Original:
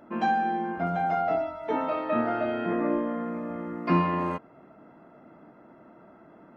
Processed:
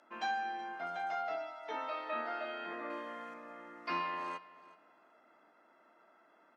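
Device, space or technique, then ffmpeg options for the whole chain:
piezo pickup straight into a mixer: -filter_complex "[0:a]highpass=220,equalizer=f=2.6k:w=1.5:g=-3,aecho=1:1:374|748:0.112|0.0202,asettb=1/sr,asplit=3[a][b][c];[a]atrim=end=2.904[d];[b]atrim=start=2.9:end=3.34,asetpts=PTS-STARTPTS,afade=t=in:d=0.004:c=qsin,afade=t=out:st=0.436:d=0.004:c=qsin,highshelf=f=3k:g=9[e];[c]atrim=start=3.336[f];[d][e]acrossfade=d=0.004:c1=hsin:c2=qsin[g];[g][f]acrossfade=d=0.004:c1=qsin:c2=hsin,lowpass=5.1k,aderivative,volume=8dB"

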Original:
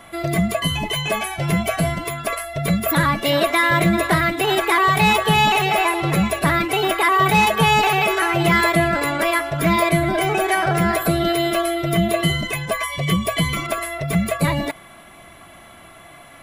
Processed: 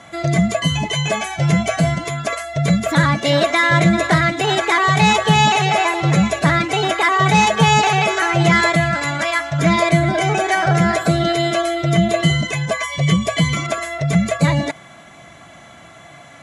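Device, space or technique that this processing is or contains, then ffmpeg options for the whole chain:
car door speaker: -filter_complex "[0:a]asettb=1/sr,asplit=3[a][b][c];[a]atrim=end=8.764[d];[b]atrim=start=8.76:end=9.59,asetpts=PTS-STARTPTS,afade=t=in:d=0.004:c=qsin,afade=t=out:st=0.826:d=0.004:c=qsin,equalizer=f=420:w=1.6:g=-13[e];[c]atrim=start=9.586[f];[d][e]acrossfade=d=0.004:c1=hsin:c2=qsin[g];[g][f]acrossfade=d=0.004:c1=qsin:c2=hsin,highpass=81,equalizer=f=140:t=q:w=4:g=5,equalizer=f=370:t=q:w=4:g=-5,equalizer=f=1.1k:t=q:w=4:g=-4,equalizer=f=2.7k:t=q:w=4:g=-4,equalizer=f=6.5k:t=q:w=4:g=9,lowpass=f=8.2k:w=0.5412,lowpass=f=8.2k:w=1.3066,volume=3dB"

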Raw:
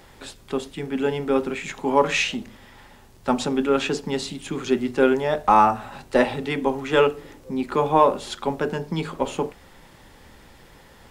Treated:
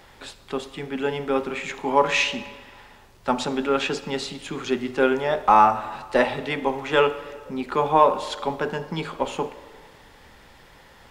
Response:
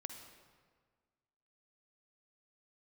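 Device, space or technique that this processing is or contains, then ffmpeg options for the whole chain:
filtered reverb send: -filter_complex "[0:a]asplit=2[a][b];[b]highpass=450,lowpass=6.4k[c];[1:a]atrim=start_sample=2205[d];[c][d]afir=irnorm=-1:irlink=0,volume=0dB[e];[a][e]amix=inputs=2:normalize=0,volume=-3dB"

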